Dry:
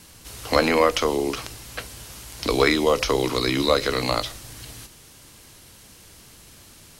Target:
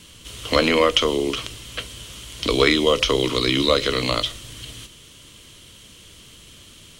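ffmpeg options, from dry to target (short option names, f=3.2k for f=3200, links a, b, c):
-af "equalizer=f=800:t=o:w=0.33:g=-12,equalizer=f=1.6k:t=o:w=0.33:g=-4,equalizer=f=3.15k:t=o:w=0.33:g=11,equalizer=f=5k:t=o:w=0.33:g=-4,equalizer=f=12.5k:t=o:w=0.33:g=-12,volume=2dB"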